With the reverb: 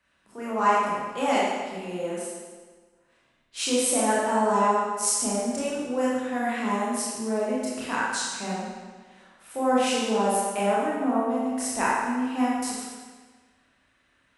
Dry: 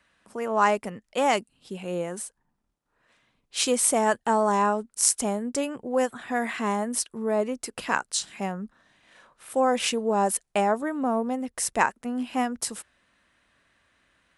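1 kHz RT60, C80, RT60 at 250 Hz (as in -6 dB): 1.5 s, 0.5 dB, 1.5 s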